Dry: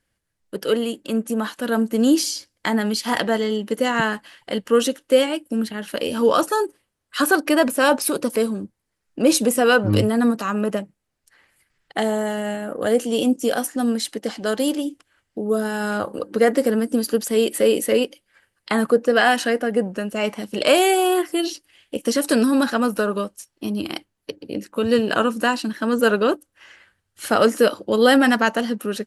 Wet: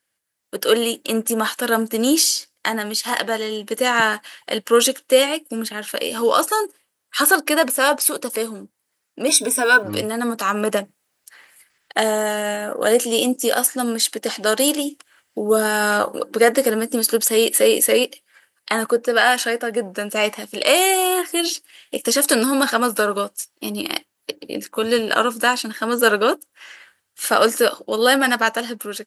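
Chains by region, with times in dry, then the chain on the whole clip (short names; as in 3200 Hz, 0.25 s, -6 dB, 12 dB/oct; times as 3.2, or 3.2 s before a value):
9.28–9.83 ripple EQ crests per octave 1.6, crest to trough 15 dB + short-mantissa float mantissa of 6-bit
whole clip: HPF 640 Hz 6 dB/oct; high shelf 10000 Hz +9.5 dB; AGC gain up to 11 dB; gain -1 dB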